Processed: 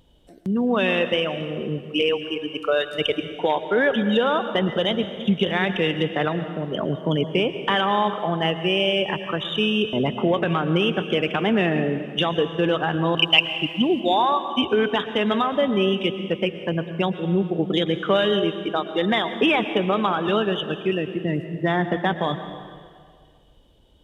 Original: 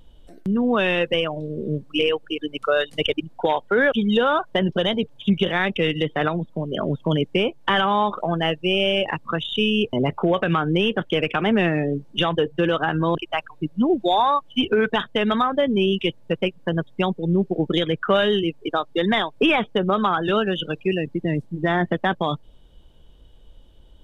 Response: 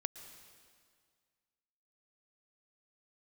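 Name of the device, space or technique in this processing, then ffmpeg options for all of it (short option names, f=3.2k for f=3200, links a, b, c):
stairwell: -filter_complex "[0:a]highpass=f=98:p=1,equalizer=f=1.4k:t=o:w=0.52:g=-3.5,asettb=1/sr,asplit=3[a][b][c];[a]atrim=end=13.174[d];[b]atrim=start=13.17:end=14,asetpts=PTS-STARTPTS,afade=t=in:d=0.004:c=qsin,afade=t=out:st=0.826:d=0.004:c=qsin,highshelf=f=2.1k:t=q:w=3:g=11[e];[c]atrim=start=13.996[f];[d][e]acrossfade=d=0.004:c1=hsin:c2=qsin[g];[g][f]acrossfade=d=0.004:c1=qsin:c2=hsin[h];[1:a]atrim=start_sample=2205[i];[h][i]afir=irnorm=-1:irlink=0,volume=1dB"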